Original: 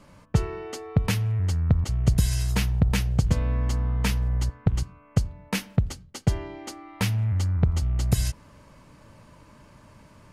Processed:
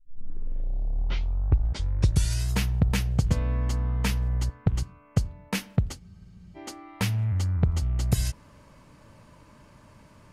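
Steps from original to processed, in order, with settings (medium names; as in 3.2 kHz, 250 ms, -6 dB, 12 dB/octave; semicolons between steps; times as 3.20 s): tape start-up on the opening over 2.48 s; spectral freeze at 6.01 s, 0.55 s; trim -1.5 dB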